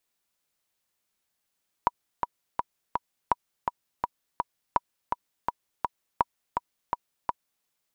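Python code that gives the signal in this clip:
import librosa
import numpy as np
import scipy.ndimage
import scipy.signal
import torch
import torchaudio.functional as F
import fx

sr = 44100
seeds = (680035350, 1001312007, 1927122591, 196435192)

y = fx.click_track(sr, bpm=166, beats=4, bars=4, hz=967.0, accent_db=5.0, level_db=-7.5)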